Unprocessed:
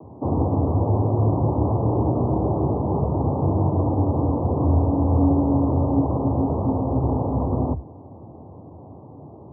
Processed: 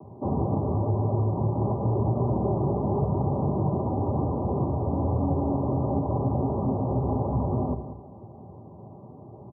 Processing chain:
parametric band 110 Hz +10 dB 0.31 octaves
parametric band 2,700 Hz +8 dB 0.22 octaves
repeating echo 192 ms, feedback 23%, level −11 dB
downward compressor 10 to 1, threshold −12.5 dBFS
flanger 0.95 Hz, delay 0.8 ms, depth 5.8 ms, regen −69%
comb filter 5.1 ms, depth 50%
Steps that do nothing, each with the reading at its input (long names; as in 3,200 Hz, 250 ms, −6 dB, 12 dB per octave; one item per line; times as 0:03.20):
parametric band 2,700 Hz: nothing at its input above 960 Hz